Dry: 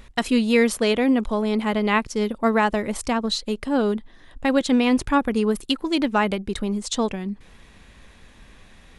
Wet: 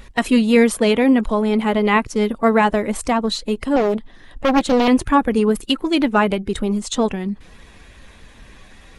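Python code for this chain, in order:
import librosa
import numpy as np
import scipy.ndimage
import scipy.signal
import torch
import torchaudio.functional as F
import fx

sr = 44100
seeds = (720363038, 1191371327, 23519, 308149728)

y = fx.spec_quant(x, sr, step_db=15)
y = fx.dynamic_eq(y, sr, hz=4800.0, q=1.3, threshold_db=-45.0, ratio=4.0, max_db=-5)
y = fx.doppler_dist(y, sr, depth_ms=0.96, at=(3.76, 4.88))
y = y * 10.0 ** (5.0 / 20.0)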